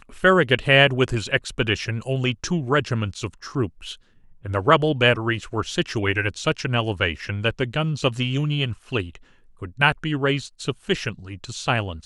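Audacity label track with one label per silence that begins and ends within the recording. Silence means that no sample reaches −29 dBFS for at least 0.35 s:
3.930000	4.450000	silence
9.150000	9.620000	silence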